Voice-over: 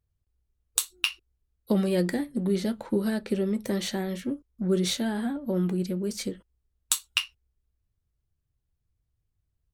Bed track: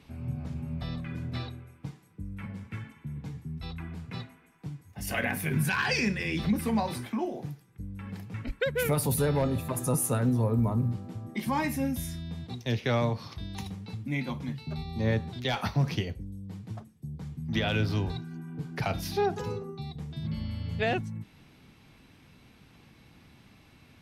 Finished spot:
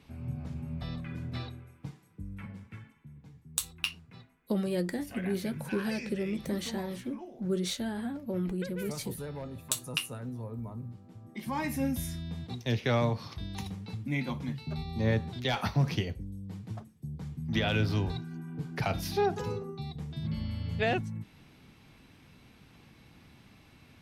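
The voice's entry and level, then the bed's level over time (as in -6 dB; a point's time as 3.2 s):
2.80 s, -6.0 dB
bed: 2.35 s -2.5 dB
3.19 s -13.5 dB
10.97 s -13.5 dB
11.85 s -0.5 dB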